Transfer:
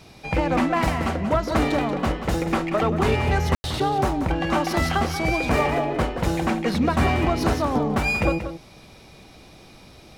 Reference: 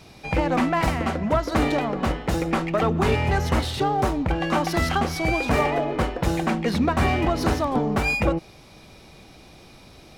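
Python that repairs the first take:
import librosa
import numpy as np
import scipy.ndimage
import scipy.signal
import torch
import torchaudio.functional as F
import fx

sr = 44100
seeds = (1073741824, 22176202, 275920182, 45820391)

y = fx.fix_ambience(x, sr, seeds[0], print_start_s=8.62, print_end_s=9.12, start_s=3.55, end_s=3.64)
y = fx.fix_echo_inverse(y, sr, delay_ms=184, level_db=-10.0)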